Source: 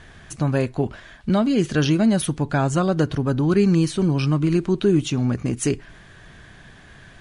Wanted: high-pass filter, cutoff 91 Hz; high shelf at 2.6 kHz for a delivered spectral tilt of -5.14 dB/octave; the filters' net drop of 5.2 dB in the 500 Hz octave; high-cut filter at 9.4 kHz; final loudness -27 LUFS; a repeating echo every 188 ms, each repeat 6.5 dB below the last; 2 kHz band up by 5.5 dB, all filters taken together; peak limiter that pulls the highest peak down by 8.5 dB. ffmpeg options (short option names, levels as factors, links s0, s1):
-af "highpass=91,lowpass=9400,equalizer=f=500:t=o:g=-8,equalizer=f=2000:t=o:g=5.5,highshelf=f=2600:g=6,alimiter=limit=0.178:level=0:latency=1,aecho=1:1:188|376|564|752|940|1128:0.473|0.222|0.105|0.0491|0.0231|0.0109,volume=0.668"